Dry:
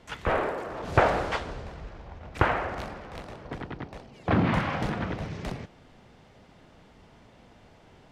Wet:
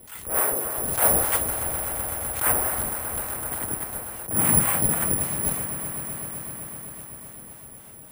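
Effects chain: harmonic tremolo 3.5 Hz, depth 70%, crossover 630 Hz; Chebyshev shaper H 5 -13 dB, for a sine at -9.5 dBFS; careless resampling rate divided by 4×, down none, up zero stuff; on a send: echo with a slow build-up 127 ms, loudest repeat 5, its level -17 dB; on the sum: attacks held to a fixed rise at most 130 dB/s; trim -2.5 dB

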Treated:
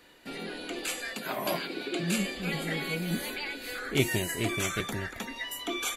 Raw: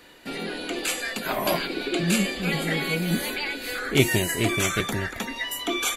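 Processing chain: 1.13–2.18 s: high-pass 86 Hz; trim -6.5 dB

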